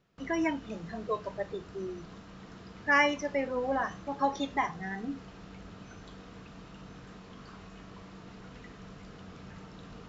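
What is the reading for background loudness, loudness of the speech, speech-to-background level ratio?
-49.0 LUFS, -32.0 LUFS, 17.0 dB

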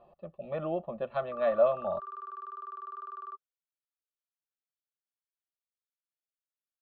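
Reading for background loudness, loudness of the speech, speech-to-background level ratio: -43.0 LUFS, -31.0 LUFS, 12.0 dB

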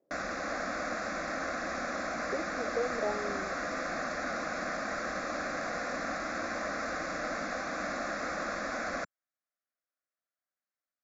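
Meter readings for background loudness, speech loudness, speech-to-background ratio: -35.0 LUFS, -38.0 LUFS, -3.0 dB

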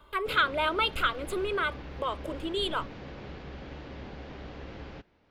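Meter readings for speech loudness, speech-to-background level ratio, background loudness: -29.5 LUFS, 14.0 dB, -43.5 LUFS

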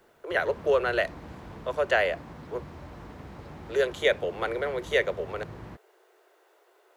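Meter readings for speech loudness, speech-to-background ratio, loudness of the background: -28.5 LUFS, 16.0 dB, -44.5 LUFS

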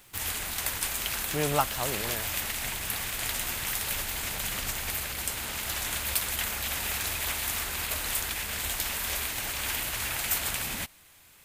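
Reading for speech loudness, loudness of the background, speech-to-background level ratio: -32.0 LUFS, -29.5 LUFS, -2.5 dB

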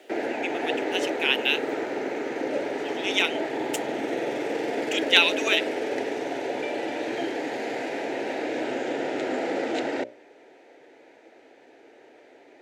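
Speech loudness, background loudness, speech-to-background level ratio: -24.5 LUFS, -29.0 LUFS, 4.5 dB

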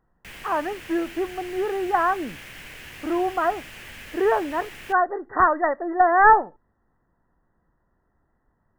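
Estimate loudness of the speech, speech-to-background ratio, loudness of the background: -22.5 LUFS, 17.5 dB, -40.0 LUFS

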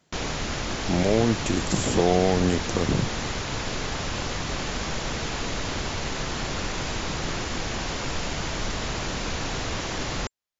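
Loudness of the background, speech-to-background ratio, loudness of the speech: -29.5 LUFS, 5.0 dB, -24.5 LUFS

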